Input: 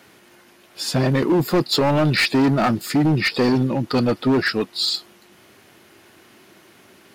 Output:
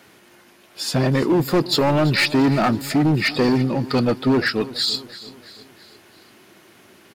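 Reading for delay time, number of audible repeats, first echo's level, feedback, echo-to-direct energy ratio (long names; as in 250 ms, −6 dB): 335 ms, 4, −17.5 dB, 52%, −16.0 dB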